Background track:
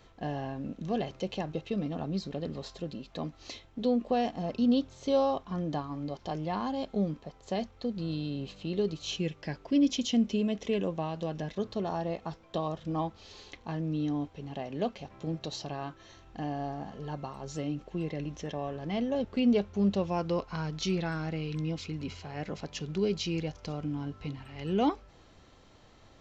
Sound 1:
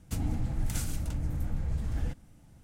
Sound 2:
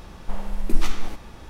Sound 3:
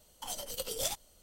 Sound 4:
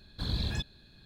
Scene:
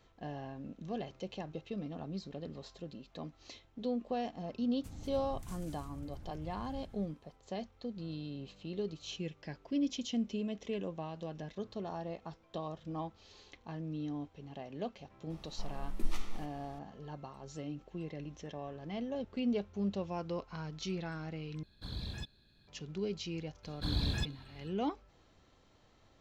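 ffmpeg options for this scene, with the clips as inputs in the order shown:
-filter_complex "[4:a]asplit=2[s0][s1];[0:a]volume=0.398[s2];[1:a]aecho=1:1:195.3|285.7:0.501|0.251[s3];[2:a]asuperstop=centerf=1600:order=4:qfactor=6.3[s4];[s2]asplit=2[s5][s6];[s5]atrim=end=21.634[s7];[s0]atrim=end=1.05,asetpts=PTS-STARTPTS,volume=0.335[s8];[s6]atrim=start=22.676[s9];[s3]atrim=end=2.63,asetpts=PTS-STARTPTS,volume=0.141,afade=t=in:d=0.004:c=hsin,afade=t=out:st=2.626:d=0.004:c=hsin,adelay=208593S[s10];[s4]atrim=end=1.49,asetpts=PTS-STARTPTS,volume=0.211,afade=t=in:d=0.004:c=hsin,afade=t=out:st=1.486:d=0.004:c=hsin,adelay=15300[s11];[s1]atrim=end=1.05,asetpts=PTS-STARTPTS,volume=0.841,afade=t=in:d=0.004:c=hsin,afade=t=out:st=1.046:d=0.004:c=hsin,adelay=23630[s12];[s7][s8]acrossfade=d=0.004:c1=hsin:c2=hsin[s13];[s13][s9]acrossfade=d=0.004:c1=hsin:c2=hsin[s14];[s14][s10][s11][s12]amix=inputs=4:normalize=0"

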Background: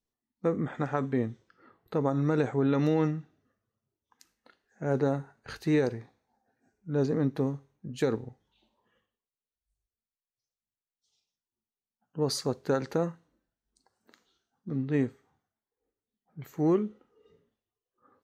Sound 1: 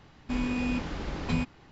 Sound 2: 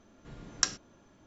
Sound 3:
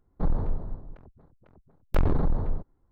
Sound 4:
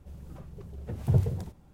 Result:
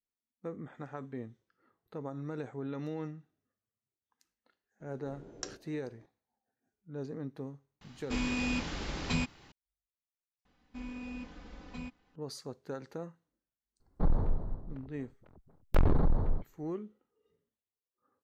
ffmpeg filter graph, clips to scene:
-filter_complex "[1:a]asplit=2[s0][s1];[0:a]volume=0.224[s2];[2:a]firequalizer=gain_entry='entry(210,0);entry(390,12);entry(1100,-7)':delay=0.05:min_phase=1[s3];[s0]highshelf=f=2600:g=11[s4];[s1]aecho=1:1:4:0.75[s5];[s3]atrim=end=1.26,asetpts=PTS-STARTPTS,volume=0.422,afade=t=in:d=0.004:c=hsin,afade=t=out:st=1.256:d=0.004:c=hsin,adelay=4800[s6];[s4]atrim=end=1.71,asetpts=PTS-STARTPTS,volume=0.631,afade=t=in:d=0.004:c=hsin,afade=t=out:st=1.706:d=0.004:c=hsin,adelay=7810[s7];[s5]atrim=end=1.71,asetpts=PTS-STARTPTS,volume=0.141,afade=t=in:d=0.004:c=hsin,afade=t=out:st=1.706:d=0.004:c=hsin,adelay=10450[s8];[3:a]atrim=end=2.91,asetpts=PTS-STARTPTS,volume=0.794,afade=t=in:d=0.004:c=hsin,afade=t=out:st=2.906:d=0.004:c=hsin,adelay=608580S[s9];[s2][s6][s7][s8][s9]amix=inputs=5:normalize=0"

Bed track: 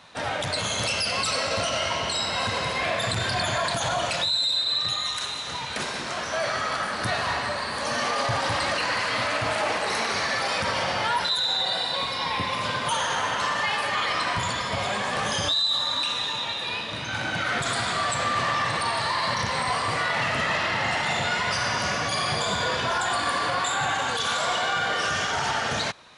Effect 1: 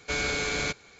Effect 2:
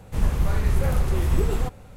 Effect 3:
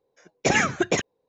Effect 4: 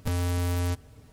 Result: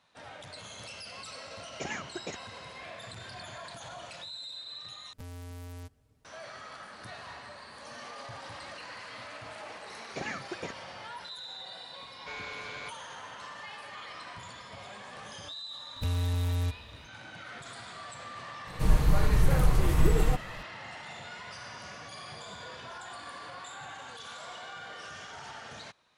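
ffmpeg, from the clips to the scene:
-filter_complex "[3:a]asplit=2[s0][s1];[4:a]asplit=2[s2][s3];[0:a]volume=0.119[s4];[s1]acrossover=split=4200[s5][s6];[s6]acompressor=threshold=0.0141:ratio=4:attack=1:release=60[s7];[s5][s7]amix=inputs=2:normalize=0[s8];[1:a]acrossover=split=430 4200:gain=0.2 1 0.158[s9][s10][s11];[s9][s10][s11]amix=inputs=3:normalize=0[s12];[s3]equalizer=f=66:w=1.5:g=12[s13];[2:a]aecho=1:1:6.5:0.45[s14];[s4]asplit=2[s15][s16];[s15]atrim=end=5.134[s17];[s2]atrim=end=1.12,asetpts=PTS-STARTPTS,volume=0.15[s18];[s16]atrim=start=6.246[s19];[s0]atrim=end=1.28,asetpts=PTS-STARTPTS,volume=0.141,afade=t=in:d=0.004:c=hsin,afade=t=out:st=1.276:d=0.004:c=hsin,adelay=1350[s20];[s8]atrim=end=1.28,asetpts=PTS-STARTPTS,volume=0.15,afade=t=in:d=0.004:c=hsin,afade=t=out:st=1.276:d=0.004:c=hsin,adelay=9710[s21];[s12]atrim=end=0.99,asetpts=PTS-STARTPTS,volume=0.282,afade=t=in:d=0.004:c=hsin,afade=t=out:st=0.986:d=0.004:c=hsin,adelay=12180[s22];[s13]atrim=end=1.12,asetpts=PTS-STARTPTS,volume=0.398,afade=t=in:d=0.004:c=hsin,afade=t=out:st=1.116:d=0.004:c=hsin,adelay=15960[s23];[s14]atrim=end=1.96,asetpts=PTS-STARTPTS,volume=0.841,afade=t=in:d=0.004:c=hsin,afade=t=out:st=1.956:d=0.004:c=hsin,adelay=18670[s24];[s17][s18]acrossfade=d=0.004:c1=hsin:c2=hsin[s25];[s25][s19]acrossfade=d=0.004:c1=hsin:c2=hsin[s26];[s26][s20][s21][s22][s23][s24]amix=inputs=6:normalize=0"

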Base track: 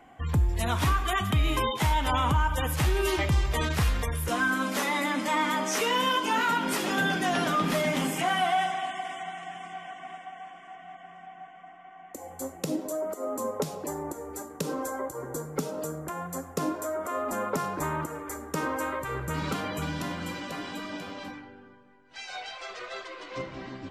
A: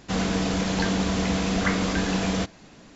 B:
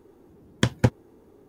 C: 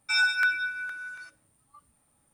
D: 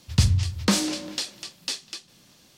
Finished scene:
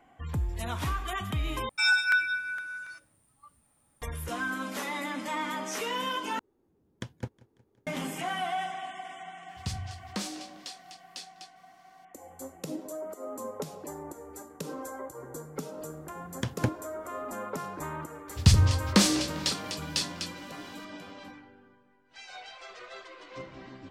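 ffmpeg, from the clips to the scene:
-filter_complex "[2:a]asplit=2[s0][s1];[4:a]asplit=2[s2][s3];[0:a]volume=0.473[s4];[s0]aecho=1:1:182|364|546|728:0.0668|0.0381|0.0217|0.0124[s5];[s2]lowshelf=f=91:g=-8[s6];[s1]alimiter=limit=0.188:level=0:latency=1:release=137[s7];[s4]asplit=3[s8][s9][s10];[s8]atrim=end=1.694[s11];[3:a]atrim=end=2.33[s12];[s9]atrim=start=4.016:end=6.394[s13];[s5]atrim=end=1.48,asetpts=PTS-STARTPTS,volume=0.133[s14];[s10]atrim=start=7.866[s15];[s6]atrim=end=2.57,asetpts=PTS-STARTPTS,volume=0.224,afade=t=in:d=0.004:c=hsin,afade=t=out:st=2.566:d=0.004:c=hsin,adelay=9480[s16];[s7]atrim=end=1.48,asetpts=PTS-STARTPTS,volume=0.944,afade=t=in:d=0.004:c=hsin,afade=t=out:st=1.476:d=0.004:c=hsin,adelay=15800[s17];[s3]atrim=end=2.57,asetpts=PTS-STARTPTS,afade=t=in:d=0.004:c=hsin,afade=t=out:st=2.566:d=0.004:c=hsin,adelay=806148S[s18];[s11][s12]acrossfade=d=0.004:c1=hsin:c2=hsin[s19];[s19][s13]acrossfade=d=0.004:c1=hsin:c2=hsin[s20];[s20][s14]acrossfade=d=0.004:c1=hsin:c2=hsin[s21];[s21][s15]acrossfade=d=0.004:c1=hsin:c2=hsin[s22];[s22][s16][s17][s18]amix=inputs=4:normalize=0"

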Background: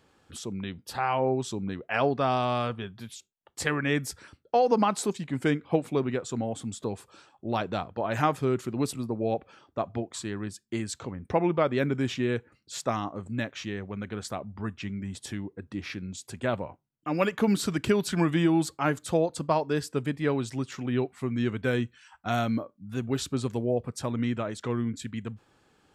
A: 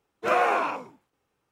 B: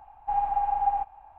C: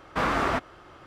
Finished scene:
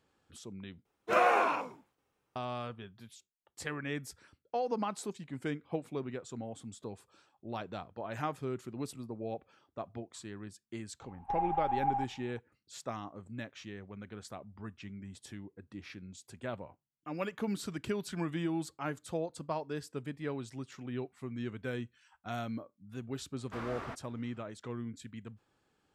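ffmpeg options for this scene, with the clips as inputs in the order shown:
-filter_complex "[0:a]volume=0.282[s0];[2:a]bandreject=f=670:w=16[s1];[s0]asplit=2[s2][s3];[s2]atrim=end=0.854[s4];[1:a]atrim=end=1.51,asetpts=PTS-STARTPTS,volume=0.668[s5];[s3]atrim=start=2.356[s6];[s1]atrim=end=1.38,asetpts=PTS-STARTPTS,volume=0.473,afade=t=in:d=0.004:c=hsin,afade=t=out:st=1.376:d=0.004:c=hsin,adelay=11010[s7];[3:a]atrim=end=1.06,asetpts=PTS-STARTPTS,volume=0.133,afade=t=in:d=0.004:c=hsin,afade=t=out:st=1.056:d=0.004:c=hsin,adelay=23360[s8];[s4][s5]acrossfade=d=0.004:c1=hsin:c2=hsin[s9];[s9][s6]acrossfade=d=0.004:c1=hsin:c2=hsin[s10];[s10][s7][s8]amix=inputs=3:normalize=0"

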